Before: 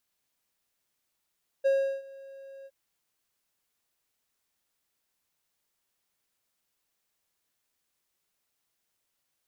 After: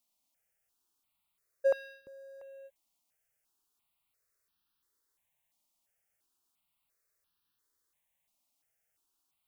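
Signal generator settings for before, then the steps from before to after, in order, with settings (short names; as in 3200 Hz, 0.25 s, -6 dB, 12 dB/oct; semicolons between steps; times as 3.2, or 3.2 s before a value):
ADSR triangle 544 Hz, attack 21 ms, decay 0.358 s, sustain -23.5 dB, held 1.02 s, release 44 ms -18 dBFS
step phaser 2.9 Hz 440–2100 Hz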